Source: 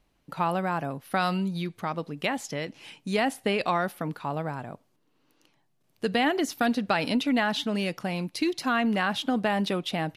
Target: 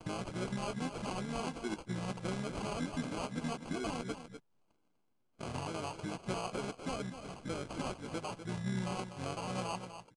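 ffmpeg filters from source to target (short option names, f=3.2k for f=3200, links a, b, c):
-filter_complex "[0:a]areverse,agate=range=-15dB:threshold=-58dB:ratio=16:detection=peak,adynamicequalizer=threshold=0.00141:dfrequency=8600:dqfactor=1.6:tfrequency=8600:tqfactor=1.6:attack=5:release=100:ratio=0.375:range=1.5:mode=cutabove:tftype=bell,acompressor=threshold=-38dB:ratio=8,asplit=2[a][b];[b]adelay=16,volume=-6dB[c];[a][c]amix=inputs=2:normalize=0,asplit=3[d][e][f];[e]asetrate=29433,aresample=44100,atempo=1.49831,volume=-4dB[g];[f]asetrate=52444,aresample=44100,atempo=0.840896,volume=-13dB[h];[d][g][h]amix=inputs=3:normalize=0,acrusher=samples=24:mix=1:aa=0.000001,asplit=2[i][j];[j]aecho=0:1:247:0.316[k];[i][k]amix=inputs=2:normalize=0,acrusher=bits=4:mode=log:mix=0:aa=0.000001,aresample=22050,aresample=44100,volume=-1dB"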